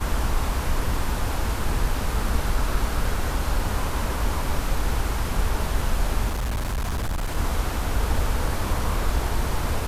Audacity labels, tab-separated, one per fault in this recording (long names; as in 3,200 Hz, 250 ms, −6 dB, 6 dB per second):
6.280000	7.370000	clipping −22.5 dBFS